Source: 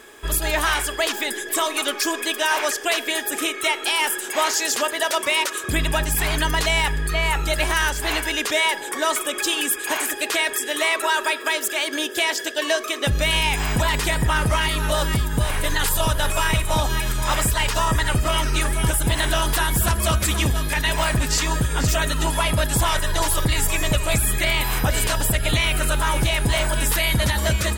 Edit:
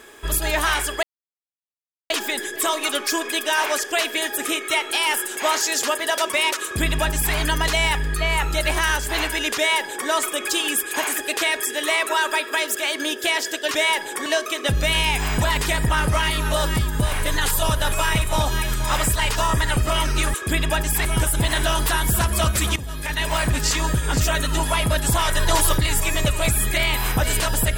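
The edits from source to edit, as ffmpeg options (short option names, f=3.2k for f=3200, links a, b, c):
-filter_complex "[0:a]asplit=9[a][b][c][d][e][f][g][h][i];[a]atrim=end=1.03,asetpts=PTS-STARTPTS,afade=t=out:st=1.026:d=0.004:c=hsin,apad=pad_dur=1.07[j];[b]atrim=start=1.03:end=12.642,asetpts=PTS-STARTPTS,afade=t=in:d=0.004:c=hsin[k];[c]atrim=start=8.468:end=9.022[l];[d]atrim=start=12.638:end=18.722[m];[e]atrim=start=5.558:end=6.272[n];[f]atrim=start=18.718:end=20.43,asetpts=PTS-STARTPTS,afade=t=out:st=1.708:d=0.004:c=hsin:silence=0.16788[o];[g]atrim=start=20.43:end=23.002,asetpts=PTS-STARTPTS,afade=t=in:d=0.87:c=qsin:silence=0.16788[p];[h]atrim=start=22.998:end=23.422,asetpts=PTS-STARTPTS,volume=3dB[q];[i]atrim=start=23.418[r];[j][k]concat=n=2:v=0:a=1[s];[s][l]acrossfade=d=0.004:c1=hsin:c2=hsin[t];[t][m]acrossfade=d=0.004:c1=hsin:c2=hsin[u];[u][n]acrossfade=d=0.004:c1=hsin:c2=hsin[v];[o][p]concat=n=2:v=0:a=1[w];[v][w]acrossfade=d=0.004:c1=hsin:c2=hsin[x];[x][q]acrossfade=d=0.004:c1=hsin:c2=hsin[y];[y][r]acrossfade=d=0.004:c1=hsin:c2=hsin"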